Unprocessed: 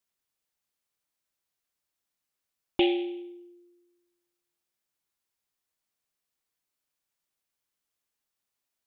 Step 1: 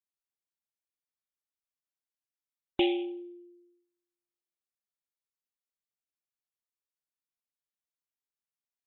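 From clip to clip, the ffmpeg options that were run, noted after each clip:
ffmpeg -i in.wav -af "afftdn=noise_reduction=13:noise_floor=-46,volume=-2.5dB" out.wav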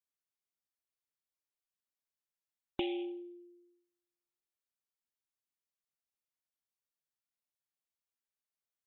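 ffmpeg -i in.wav -af "acompressor=threshold=-28dB:ratio=6,volume=-3.5dB" out.wav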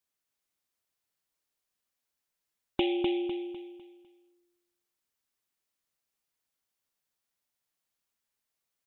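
ffmpeg -i in.wav -af "aecho=1:1:251|502|753|1004|1255:0.596|0.214|0.0772|0.0278|0.01,volume=7dB" out.wav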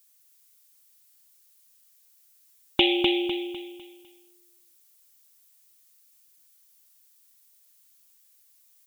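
ffmpeg -i in.wav -af "crystalizer=i=7.5:c=0,volume=3.5dB" out.wav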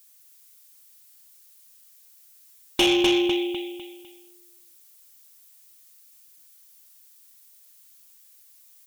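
ffmpeg -i in.wav -af "asoftclip=type=tanh:threshold=-21dB,volume=6.5dB" out.wav

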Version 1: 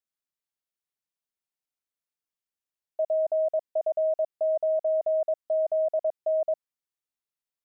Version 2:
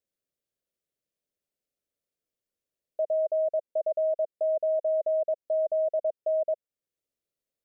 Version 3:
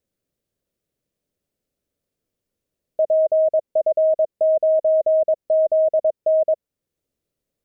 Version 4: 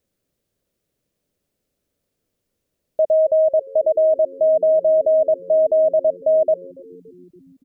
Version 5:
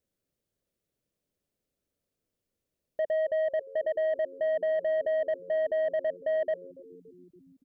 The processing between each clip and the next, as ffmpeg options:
ffmpeg -i in.wav -af "lowshelf=frequency=700:width_type=q:width=3:gain=7,alimiter=limit=-22dB:level=0:latency=1:release=467" out.wav
ffmpeg -i in.wav -af "lowshelf=frequency=450:gain=12,volume=5dB" out.wav
ffmpeg -i in.wav -filter_complex "[0:a]asplit=2[link_01][link_02];[link_02]alimiter=level_in=0.5dB:limit=-24dB:level=0:latency=1:release=18,volume=-0.5dB,volume=-1dB[link_03];[link_01][link_03]amix=inputs=2:normalize=0,asplit=6[link_04][link_05][link_06][link_07][link_08][link_09];[link_05]adelay=284,afreqshift=-91,volume=-24dB[link_10];[link_06]adelay=568,afreqshift=-182,volume=-27.7dB[link_11];[link_07]adelay=852,afreqshift=-273,volume=-31.5dB[link_12];[link_08]adelay=1136,afreqshift=-364,volume=-35.2dB[link_13];[link_09]adelay=1420,afreqshift=-455,volume=-39dB[link_14];[link_04][link_10][link_11][link_12][link_13][link_14]amix=inputs=6:normalize=0" out.wav
ffmpeg -i in.wav -af "asoftclip=type=tanh:threshold=-14.5dB,volume=-9dB" out.wav

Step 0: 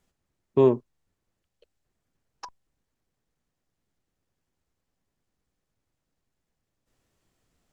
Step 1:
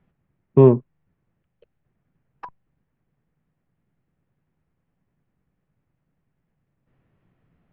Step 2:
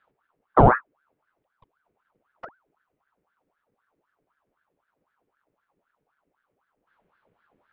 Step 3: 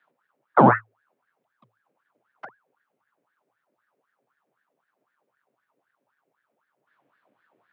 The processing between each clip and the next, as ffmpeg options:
ffmpeg -i in.wav -af "lowpass=frequency=2500:width=0.5412,lowpass=frequency=2500:width=1.3066,equalizer=frequency=150:width_type=o:width=1.1:gain=11,volume=4dB" out.wav
ffmpeg -i in.wav -af "aeval=exprs='val(0)*sin(2*PI*920*n/s+920*0.7/3.9*sin(2*PI*3.9*n/s))':channel_layout=same" out.wav
ffmpeg -i in.wav -af "afreqshift=110" out.wav

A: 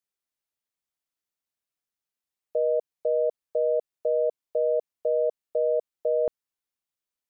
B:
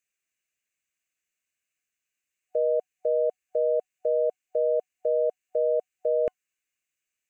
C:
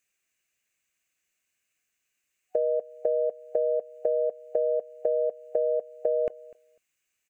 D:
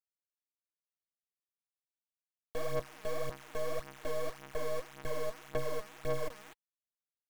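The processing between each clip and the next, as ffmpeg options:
ffmpeg -i in.wav -af "superequalizer=9b=0.282:11b=2.51:12b=3.98:15b=2.82" out.wav
ffmpeg -i in.wav -af "acompressor=threshold=-29dB:ratio=6,aecho=1:1:249|498:0.0841|0.0126,volume=6dB" out.wav
ffmpeg -i in.wav -af "asoftclip=type=tanh:threshold=-26.5dB,acrusher=bits=4:dc=4:mix=0:aa=0.000001,aphaser=in_gain=1:out_gain=1:delay=4.8:decay=0.59:speed=1.8:type=sinusoidal,volume=-4.5dB" out.wav

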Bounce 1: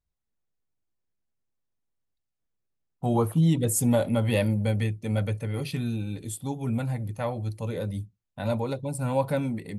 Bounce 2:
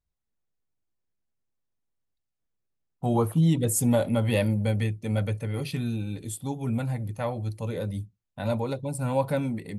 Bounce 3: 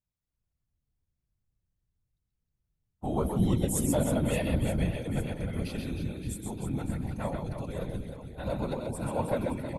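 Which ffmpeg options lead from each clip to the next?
ffmpeg -i in.wav -af anull out.wav
ffmpeg -i in.wav -af "aecho=1:1:130|312|566.8|923.5|1423:0.631|0.398|0.251|0.158|0.1,afftfilt=real='hypot(re,im)*cos(2*PI*random(0))':imag='hypot(re,im)*sin(2*PI*random(1))':win_size=512:overlap=0.75" out.wav

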